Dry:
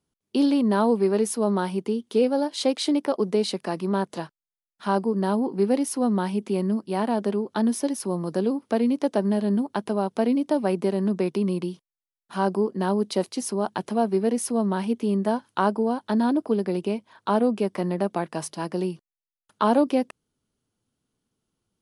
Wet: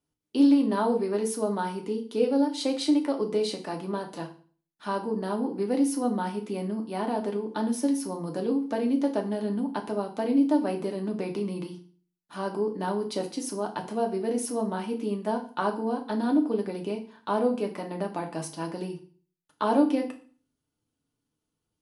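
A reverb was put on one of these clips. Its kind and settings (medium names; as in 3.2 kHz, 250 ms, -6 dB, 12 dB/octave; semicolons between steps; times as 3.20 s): FDN reverb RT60 0.42 s, low-frequency decay 1.25×, high-frequency decay 0.95×, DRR 2 dB; trim -6 dB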